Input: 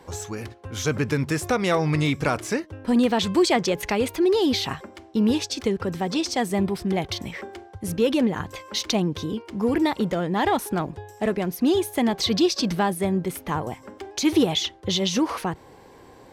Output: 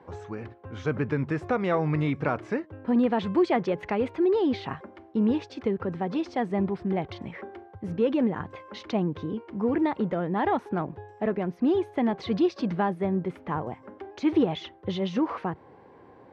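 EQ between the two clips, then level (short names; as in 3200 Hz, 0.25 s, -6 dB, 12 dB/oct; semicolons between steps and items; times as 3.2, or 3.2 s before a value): HPF 90 Hz; LPF 1800 Hz 12 dB/oct; -3.0 dB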